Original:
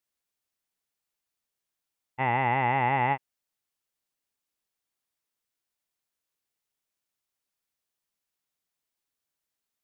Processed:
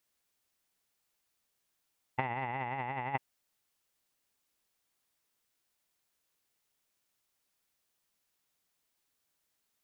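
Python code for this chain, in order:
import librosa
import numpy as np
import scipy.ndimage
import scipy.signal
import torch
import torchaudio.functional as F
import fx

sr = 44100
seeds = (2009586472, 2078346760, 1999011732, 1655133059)

y = fx.over_compress(x, sr, threshold_db=-31.0, ratio=-0.5)
y = y * librosa.db_to_amplitude(-2.5)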